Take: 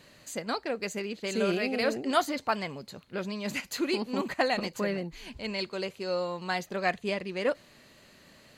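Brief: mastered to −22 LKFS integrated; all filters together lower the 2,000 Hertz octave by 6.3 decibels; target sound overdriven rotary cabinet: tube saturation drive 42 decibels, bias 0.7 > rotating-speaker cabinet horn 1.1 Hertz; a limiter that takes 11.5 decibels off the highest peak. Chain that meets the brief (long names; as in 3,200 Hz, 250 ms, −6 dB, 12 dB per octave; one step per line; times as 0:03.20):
parametric band 2,000 Hz −8 dB
brickwall limiter −24.5 dBFS
tube saturation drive 42 dB, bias 0.7
rotating-speaker cabinet horn 1.1 Hz
level +25 dB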